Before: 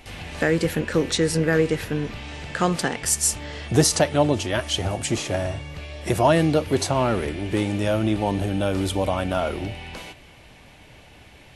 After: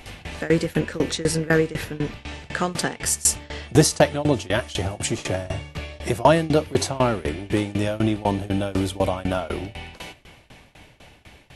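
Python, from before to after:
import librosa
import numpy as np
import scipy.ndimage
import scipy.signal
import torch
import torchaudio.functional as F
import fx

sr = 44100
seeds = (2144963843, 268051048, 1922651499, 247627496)

y = fx.tremolo_shape(x, sr, shape='saw_down', hz=4.0, depth_pct=95)
y = fx.band_squash(y, sr, depth_pct=40, at=(5.18, 5.99))
y = y * librosa.db_to_amplitude(4.0)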